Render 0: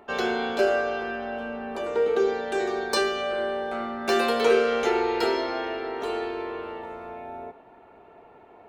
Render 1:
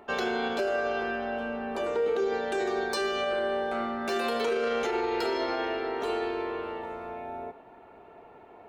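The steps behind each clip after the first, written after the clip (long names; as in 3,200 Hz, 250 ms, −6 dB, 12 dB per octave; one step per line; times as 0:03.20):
brickwall limiter −20.5 dBFS, peak gain reduction 10.5 dB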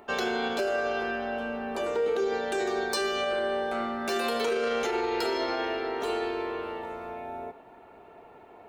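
high-shelf EQ 5,100 Hz +7 dB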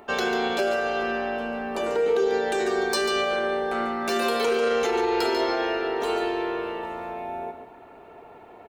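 single-tap delay 143 ms −8.5 dB
level +3.5 dB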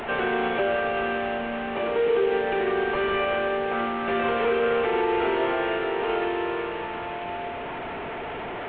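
linear delta modulator 16 kbit/s, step −27 dBFS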